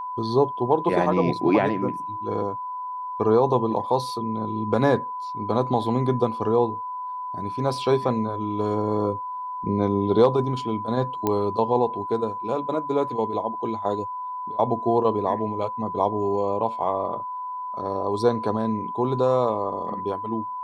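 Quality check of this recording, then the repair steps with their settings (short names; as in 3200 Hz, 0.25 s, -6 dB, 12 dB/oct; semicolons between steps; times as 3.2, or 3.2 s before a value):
tone 1000 Hz -29 dBFS
11.27 pop -10 dBFS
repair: de-click; notch 1000 Hz, Q 30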